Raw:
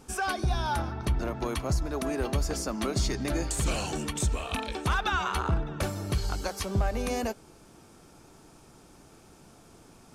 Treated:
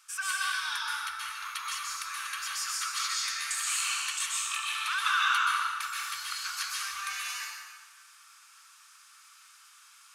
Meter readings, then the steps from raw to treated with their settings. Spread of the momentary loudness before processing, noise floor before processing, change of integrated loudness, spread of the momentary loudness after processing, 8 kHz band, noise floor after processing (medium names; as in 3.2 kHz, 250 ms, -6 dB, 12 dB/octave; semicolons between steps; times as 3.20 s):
4 LU, -55 dBFS, 0.0 dB, 10 LU, +5.0 dB, -57 dBFS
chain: elliptic high-pass 1.2 kHz, stop band 50 dB; plate-style reverb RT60 1.5 s, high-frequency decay 0.8×, pre-delay 115 ms, DRR -5 dB